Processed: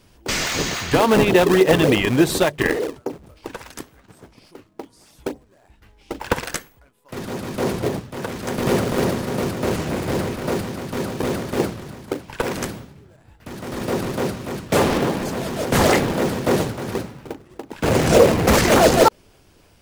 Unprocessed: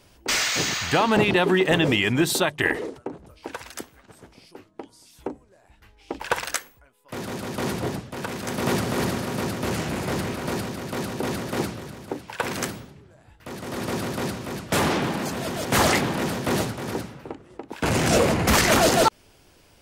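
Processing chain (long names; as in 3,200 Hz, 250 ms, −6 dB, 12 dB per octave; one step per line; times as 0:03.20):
dynamic equaliser 490 Hz, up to +7 dB, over −36 dBFS, Q 1.5
in parallel at −4 dB: sample-and-hold swept by an LFO 36×, swing 160% 3.5 Hz
on the sum: level −1 dB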